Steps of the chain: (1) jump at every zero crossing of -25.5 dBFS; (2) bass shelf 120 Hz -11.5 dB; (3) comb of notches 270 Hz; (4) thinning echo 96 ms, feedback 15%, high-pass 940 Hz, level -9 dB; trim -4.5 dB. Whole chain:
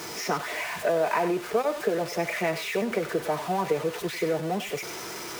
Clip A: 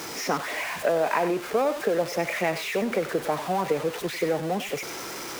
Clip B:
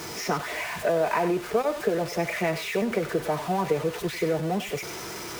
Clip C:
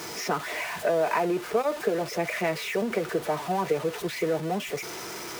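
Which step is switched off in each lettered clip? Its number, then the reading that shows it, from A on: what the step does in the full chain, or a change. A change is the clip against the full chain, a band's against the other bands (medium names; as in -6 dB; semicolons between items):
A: 3, loudness change +1.0 LU; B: 2, 125 Hz band +4.0 dB; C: 4, echo-to-direct -10.5 dB to none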